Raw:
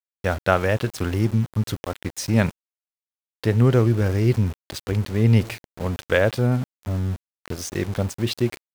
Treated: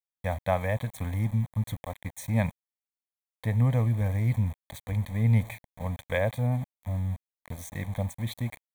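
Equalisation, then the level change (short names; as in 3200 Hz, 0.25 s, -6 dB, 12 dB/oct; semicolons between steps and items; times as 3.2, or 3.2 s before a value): Butterworth band-stop 2800 Hz, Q 3.5; fixed phaser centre 1400 Hz, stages 6; -4.0 dB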